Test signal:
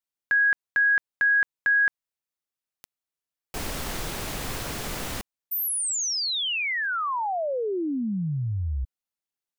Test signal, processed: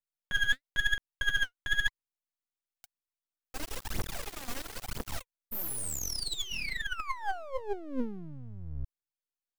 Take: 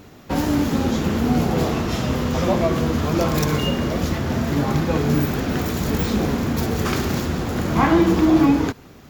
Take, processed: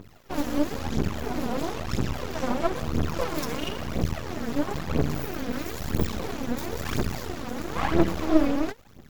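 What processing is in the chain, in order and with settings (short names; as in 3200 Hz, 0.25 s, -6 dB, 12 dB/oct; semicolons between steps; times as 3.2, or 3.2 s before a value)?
phaser 1 Hz, delay 4.3 ms, feedback 73%; half-wave rectifier; gain -7.5 dB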